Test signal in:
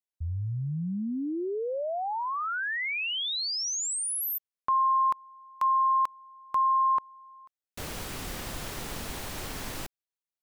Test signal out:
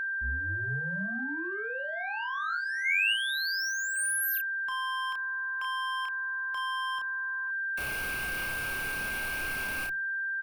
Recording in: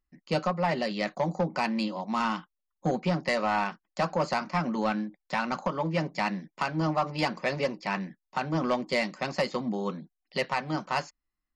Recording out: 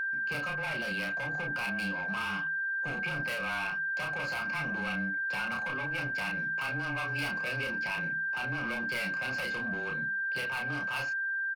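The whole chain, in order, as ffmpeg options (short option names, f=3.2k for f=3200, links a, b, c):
-filter_complex "[0:a]asoftclip=type=tanh:threshold=-32dB,superequalizer=11b=0.251:13b=0.398:14b=0.501:15b=0.316,aeval=exprs='val(0)+0.01*sin(2*PI*1600*n/s)':c=same,bandreject=f=60:t=h:w=6,bandreject=f=120:t=h:w=6,bandreject=f=180:t=h:w=6,bandreject=f=240:t=h:w=6,afreqshift=-20,bass=f=250:g=-12,treble=f=4k:g=-8,asplit=2[a][b];[b]adelay=31,volume=-3dB[c];[a][c]amix=inputs=2:normalize=0,acrossover=split=180|1800[d][e][f];[e]acompressor=threshold=-46dB:ratio=10:attack=0.18:release=161:knee=2.83:detection=peak[g];[d][g][f]amix=inputs=3:normalize=0,volume=9dB"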